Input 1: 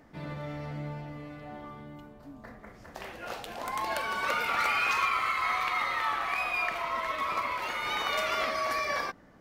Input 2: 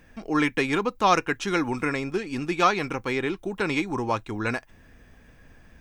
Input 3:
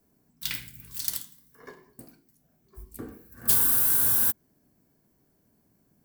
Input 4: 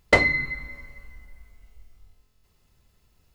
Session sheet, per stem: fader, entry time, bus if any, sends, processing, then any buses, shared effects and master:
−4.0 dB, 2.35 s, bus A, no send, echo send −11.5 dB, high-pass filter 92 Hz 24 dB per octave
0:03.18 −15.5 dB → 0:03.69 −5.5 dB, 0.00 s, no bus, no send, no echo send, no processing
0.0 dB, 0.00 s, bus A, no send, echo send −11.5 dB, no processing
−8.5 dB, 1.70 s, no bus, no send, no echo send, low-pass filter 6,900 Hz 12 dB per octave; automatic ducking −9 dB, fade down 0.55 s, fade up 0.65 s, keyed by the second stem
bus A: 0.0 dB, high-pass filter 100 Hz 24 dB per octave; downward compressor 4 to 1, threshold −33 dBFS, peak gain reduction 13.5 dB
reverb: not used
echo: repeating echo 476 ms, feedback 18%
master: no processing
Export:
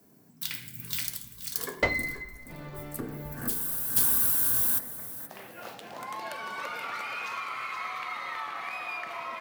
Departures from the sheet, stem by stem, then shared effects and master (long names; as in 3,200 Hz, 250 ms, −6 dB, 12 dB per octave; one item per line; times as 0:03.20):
stem 2: muted
stem 3 0.0 dB → +8.5 dB